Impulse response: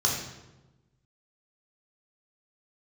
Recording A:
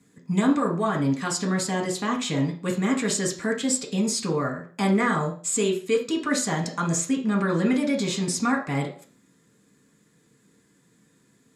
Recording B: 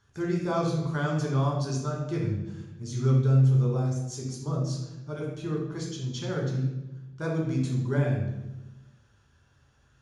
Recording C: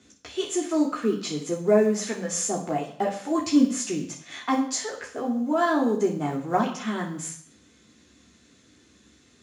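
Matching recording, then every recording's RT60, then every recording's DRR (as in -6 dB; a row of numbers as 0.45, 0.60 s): B; 0.40, 1.1, 0.60 s; 0.0, -2.5, -1.0 dB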